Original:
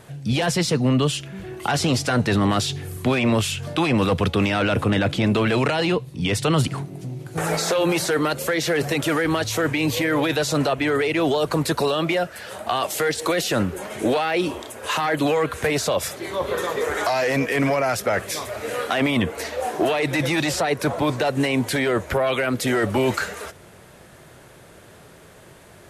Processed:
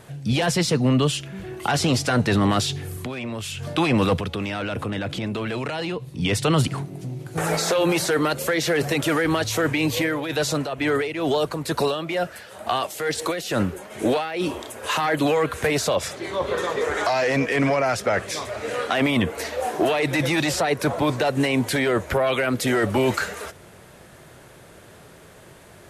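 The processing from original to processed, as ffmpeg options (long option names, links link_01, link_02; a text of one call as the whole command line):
ffmpeg -i in.wav -filter_complex "[0:a]asettb=1/sr,asplit=3[link_01][link_02][link_03];[link_01]atrim=end=2.934[link_04];[link_02]atrim=start=2.93:end=3.61,asetpts=PTS-STARTPTS,afade=type=in:duration=0.004:curve=qsin,afade=type=out:start_time=0.676:duration=0.004:curve=qsin,acompressor=threshold=-28dB:ratio=5:attack=3.2:release=140:knee=1:detection=peak[link_05];[link_03]atrim=start=3.606[link_06];[link_04][link_05]acrossfade=duration=0.004:curve1=hsin:curve2=qsin[link_07];[link_07][link_06]acrossfade=duration=0.004:curve1=qsin:curve2=hsin,asettb=1/sr,asplit=3[link_08][link_09][link_10];[link_08]atrim=end=4.194[link_11];[link_09]atrim=start=4.19:end=6.18,asetpts=PTS-STARTPTS,afade=type=in:duration=0.004:curve=qsin,afade=type=out:start_time=1.986:duration=0.004:curve=qsin,acompressor=threshold=-26dB:ratio=3:attack=3.2:release=140:knee=1:detection=peak[link_12];[link_10]atrim=start=6.176[link_13];[link_11][link_12]acrossfade=duration=0.004:curve1=hsin:curve2=qsin[link_14];[link_14][link_13]acrossfade=duration=0.004:curve1=qsin:curve2=hsin,asplit=3[link_15][link_16][link_17];[link_15]afade=type=out:start_time=9.87:duration=0.02[link_18];[link_16]tremolo=f=2.2:d=0.6,afade=type=in:start_time=9.87:duration=0.02,afade=type=out:start_time=14.4:duration=0.02[link_19];[link_17]afade=type=in:start_time=14.4:duration=0.02[link_20];[link_18][link_19][link_20]amix=inputs=3:normalize=0,asettb=1/sr,asplit=3[link_21][link_22][link_23];[link_21]atrim=end=15.954[link_24];[link_22]atrim=start=15.95:end=18.95,asetpts=PTS-STARTPTS,afade=type=in:duration=0.004:curve=qsin,afade=type=out:start_time=2.996:duration=0.004:curve=qsin,lowpass=8100[link_25];[link_23]atrim=start=18.946[link_26];[link_24][link_25]acrossfade=duration=0.004:curve1=hsin:curve2=qsin[link_27];[link_27][link_26]acrossfade=duration=0.004:curve1=qsin:curve2=hsin" out.wav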